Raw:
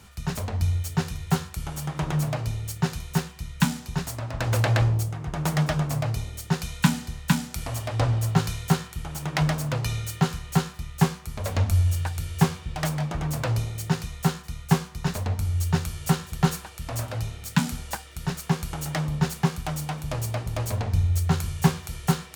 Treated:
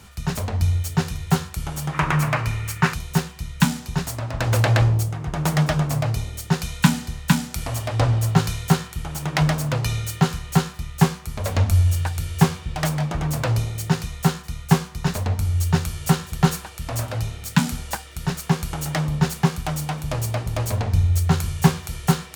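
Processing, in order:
0:01.93–0:02.94: flat-topped bell 1,600 Hz +10.5 dB
level +4 dB

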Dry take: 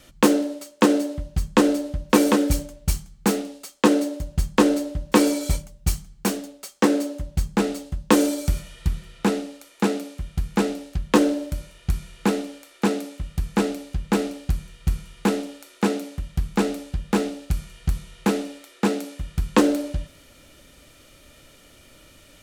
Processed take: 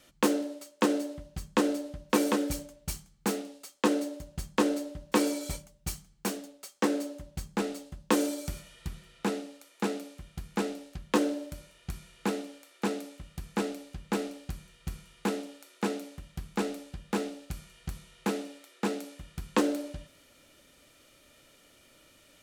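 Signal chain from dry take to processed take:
low-shelf EQ 120 Hz −11 dB
level −7.5 dB

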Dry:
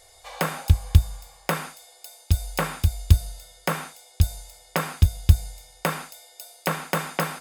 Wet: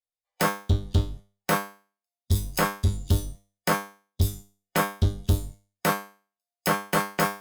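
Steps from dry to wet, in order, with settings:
noise reduction from a noise print of the clip's start 27 dB
leveller curve on the samples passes 5
tuned comb filter 100 Hz, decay 0.37 s, harmonics all, mix 90%
level −3 dB

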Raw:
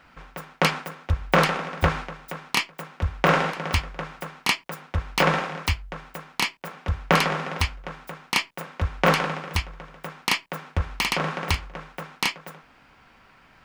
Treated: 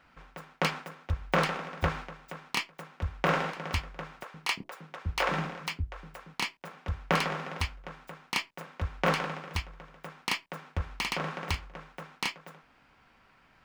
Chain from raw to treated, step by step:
running median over 3 samples
0:04.23–0:06.34: multiband delay without the direct sound highs, lows 110 ms, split 380 Hz
level −7.5 dB

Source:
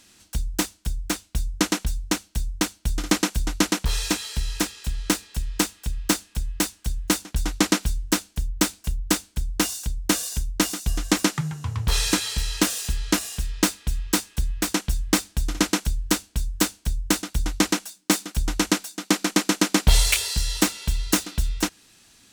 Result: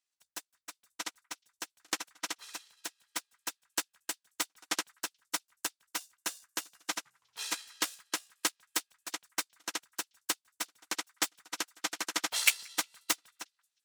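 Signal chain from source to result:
high-pass filter 740 Hz 12 dB per octave
time stretch by overlap-add 0.62×, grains 33 ms
on a send: echo through a band-pass that steps 179 ms, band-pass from 1,500 Hz, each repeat 1.4 octaves, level −8 dB
on the sum: expander for the loud parts 2.5 to 1, over −41 dBFS

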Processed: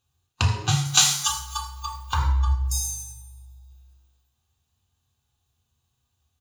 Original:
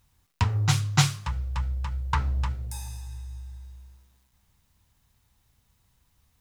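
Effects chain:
0:03.12–0:03.70: phaser with its sweep stopped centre 790 Hz, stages 4
repeating echo 260 ms, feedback 37%, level −21 dB
noise reduction from a noise print of the clip's start 22 dB
downward compressor 16 to 1, threshold −33 dBFS, peak gain reduction 19.5 dB
0:00.85–0:02.13: spectral tilt +4.5 dB per octave
convolution reverb RT60 0.75 s, pre-delay 3 ms, DRR −0.5 dB
harmonic and percussive parts rebalanced harmonic +5 dB
low-shelf EQ 290 Hz −4.5 dB
level +5 dB

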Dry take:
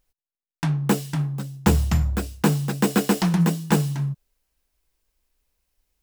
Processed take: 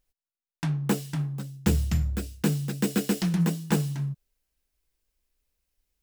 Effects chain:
parametric band 930 Hz −3 dB 1.1 octaves, from 0:01.50 −10.5 dB, from 0:03.36 −4 dB
level −4.5 dB

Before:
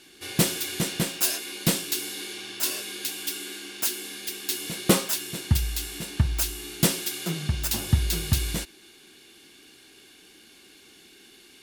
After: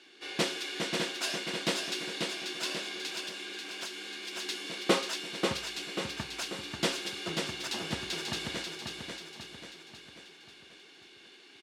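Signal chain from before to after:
band-pass filter 340–4,400 Hz
repeating echo 539 ms, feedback 51%, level −4.5 dB
0:03.19–0:04.33: downward compressor, threshold −34 dBFS, peak gain reduction 5.5 dB
level −2 dB

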